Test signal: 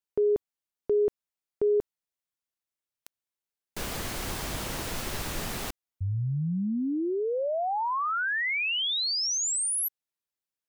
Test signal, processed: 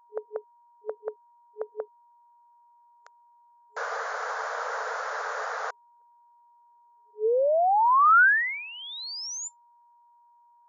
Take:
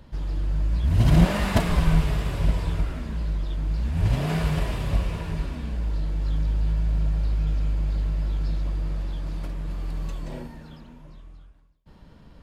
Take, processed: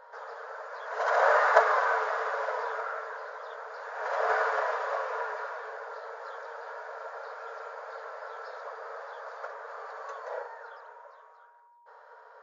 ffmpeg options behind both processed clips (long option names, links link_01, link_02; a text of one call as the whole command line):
ffmpeg -i in.wav -af "highshelf=frequency=2000:width_type=q:width=3:gain=-10.5,afftfilt=real='re*between(b*sr/4096,420,7200)':imag='im*between(b*sr/4096,420,7200)':win_size=4096:overlap=0.75,aeval=exprs='val(0)+0.000794*sin(2*PI*950*n/s)':channel_layout=same,volume=5dB" out.wav